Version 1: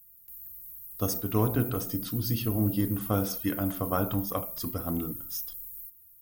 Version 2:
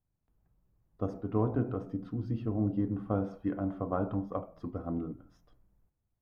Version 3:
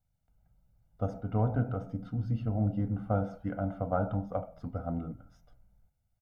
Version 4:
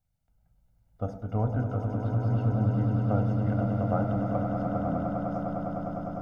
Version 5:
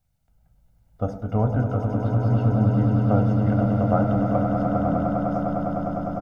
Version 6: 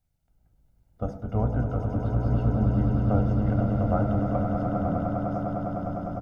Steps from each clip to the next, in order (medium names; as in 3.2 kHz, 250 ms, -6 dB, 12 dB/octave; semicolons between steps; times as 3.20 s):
low-pass 1 kHz 12 dB/octave; bass shelf 140 Hz -5 dB; trim -1.5 dB
comb 1.4 ms, depth 79%
echo with a slow build-up 101 ms, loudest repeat 8, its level -8 dB
doubling 14 ms -14 dB; trim +6.5 dB
octave divider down 1 oct, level -3 dB; trim -5 dB